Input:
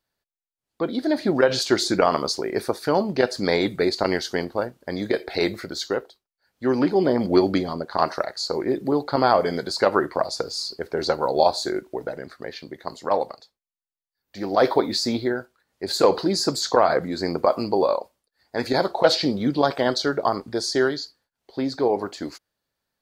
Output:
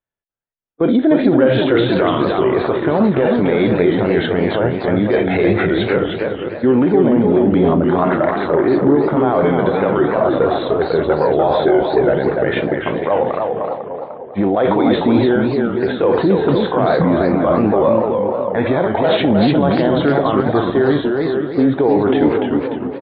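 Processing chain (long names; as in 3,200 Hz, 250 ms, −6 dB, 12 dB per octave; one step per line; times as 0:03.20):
downward expander −34 dBFS
downsampling to 8,000 Hz
reversed playback
downward compressor 6 to 1, threshold −29 dBFS, peak gain reduction 17.5 dB
reversed playback
high-frequency loss of the air 230 metres
on a send: feedback echo with a low-pass in the loop 499 ms, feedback 31%, low-pass 2,400 Hz, level −16 dB
on the sum: harmonic and percussive parts rebalanced harmonic +9 dB
boost into a limiter +25 dB
feedback echo with a swinging delay time 300 ms, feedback 39%, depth 190 cents, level −4 dB
level −5.5 dB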